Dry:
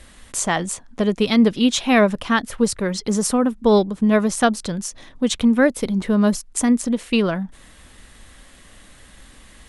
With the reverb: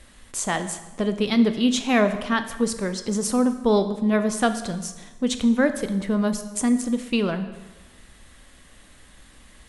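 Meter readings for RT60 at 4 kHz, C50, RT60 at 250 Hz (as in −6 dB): 1.0 s, 11.0 dB, 1.3 s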